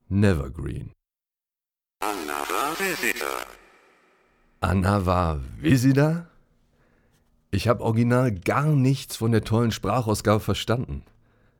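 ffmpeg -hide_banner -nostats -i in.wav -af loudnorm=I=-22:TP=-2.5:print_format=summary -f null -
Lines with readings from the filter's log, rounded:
Input Integrated:    -23.8 LUFS
Input True Peak:      -5.5 dBTP
Input LRA:             4.2 LU
Input Threshold:     -34.9 LUFS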